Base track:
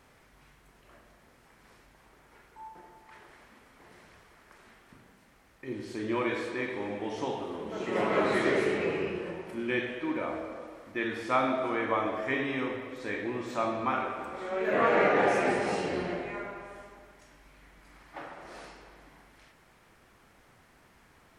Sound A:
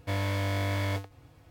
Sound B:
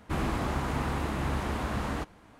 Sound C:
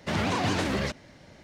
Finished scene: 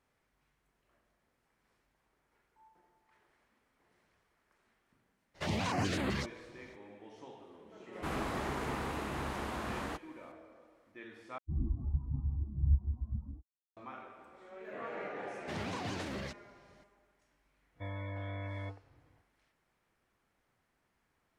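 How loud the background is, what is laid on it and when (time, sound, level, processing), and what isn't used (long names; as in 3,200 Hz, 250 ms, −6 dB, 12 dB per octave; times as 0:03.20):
base track −18 dB
0:05.34: mix in C −5.5 dB, fades 0.02 s + notch on a step sequencer 7.9 Hz 230–5,700 Hz
0:07.93: mix in B −4.5 dB + low-shelf EQ 180 Hz −8.5 dB
0:11.38: overwrite with B −1.5 dB + every bin expanded away from the loudest bin 4 to 1
0:15.41: mix in C −12.5 dB
0:17.73: mix in A −11 dB, fades 0.05 s + gate on every frequency bin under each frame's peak −25 dB strong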